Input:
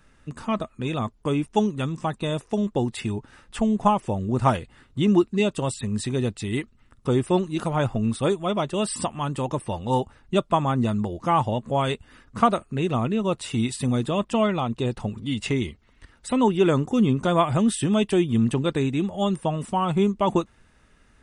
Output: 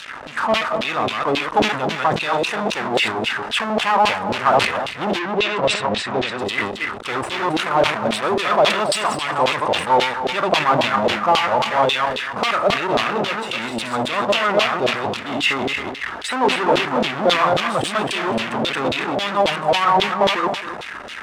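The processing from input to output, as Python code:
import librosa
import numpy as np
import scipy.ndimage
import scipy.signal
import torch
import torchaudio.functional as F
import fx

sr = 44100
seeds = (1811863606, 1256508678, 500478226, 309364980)

p1 = fx.reverse_delay(x, sr, ms=137, wet_db=-2.0)
p2 = fx.level_steps(p1, sr, step_db=23)
p3 = p1 + F.gain(torch.from_numpy(p2), 0.5).numpy()
p4 = fx.power_curve(p3, sr, exponent=0.35)
p5 = fx.filter_lfo_bandpass(p4, sr, shape='saw_down', hz=3.7, low_hz=540.0, high_hz=3700.0, q=2.0)
p6 = fx.air_absorb(p5, sr, metres=92.0, at=(5.19, 6.39))
p7 = p6 + fx.echo_single(p6, sr, ms=269, db=-12.0, dry=0)
p8 = fx.sustainer(p7, sr, db_per_s=82.0)
y = F.gain(torch.from_numpy(p8), -1.5).numpy()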